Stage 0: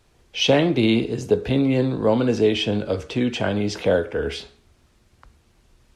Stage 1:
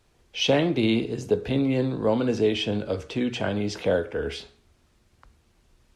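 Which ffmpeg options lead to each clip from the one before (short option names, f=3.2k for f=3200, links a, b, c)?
-af "bandreject=f=61.17:t=h:w=4,bandreject=f=122.34:t=h:w=4,volume=-4dB"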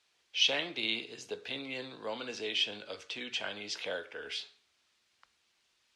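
-af "bandpass=f=3.7k:t=q:w=0.85:csg=0"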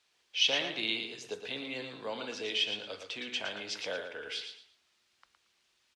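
-af "aecho=1:1:114|228|342:0.422|0.11|0.0285"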